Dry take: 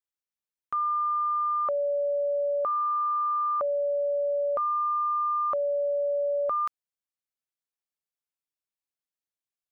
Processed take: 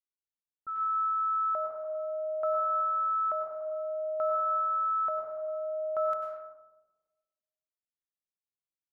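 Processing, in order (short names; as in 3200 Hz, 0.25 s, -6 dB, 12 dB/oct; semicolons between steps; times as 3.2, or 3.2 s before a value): plate-style reverb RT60 1.6 s, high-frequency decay 0.55×, pre-delay 90 ms, DRR 0.5 dB; low-pass opened by the level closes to 360 Hz, open at -21.5 dBFS; on a send: darkening echo 0.238 s, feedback 43%, low-pass 1000 Hz, level -22 dB; on the sum: speed mistake 44.1 kHz file played as 48 kHz; gain -8 dB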